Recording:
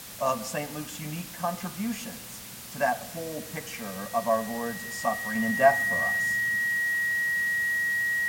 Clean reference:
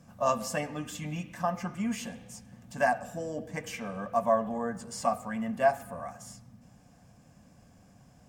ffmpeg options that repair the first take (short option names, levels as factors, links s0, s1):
-af "bandreject=f=1900:w=30,afwtdn=0.0079,asetnsamples=n=441:p=0,asendcmd='5.35 volume volume -4.5dB',volume=1"